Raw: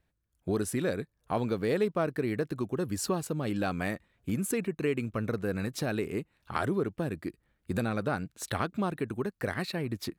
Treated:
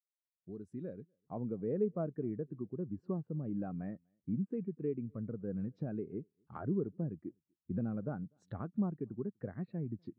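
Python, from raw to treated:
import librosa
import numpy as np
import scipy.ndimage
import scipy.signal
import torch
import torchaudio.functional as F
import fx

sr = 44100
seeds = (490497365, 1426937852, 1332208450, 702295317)

y = fx.fade_in_head(x, sr, length_s=2.08)
y = fx.env_lowpass_down(y, sr, base_hz=2100.0, full_db=-30.0)
y = fx.curve_eq(y, sr, hz=(170.0, 390.0, 1900.0), db=(0, -9, -18))
y = fx.rider(y, sr, range_db=5, speed_s=2.0)
y = scipy.signal.sosfilt(scipy.signal.butter(2, 77.0, 'highpass', fs=sr, output='sos'), y)
y = fx.low_shelf(y, sr, hz=260.0, db=-12.0)
y = y + 10.0 ** (-24.0 / 20.0) * np.pad(y, (int(246 * sr / 1000.0), 0))[:len(y)]
y = fx.spectral_expand(y, sr, expansion=1.5)
y = y * 10.0 ** (5.0 / 20.0)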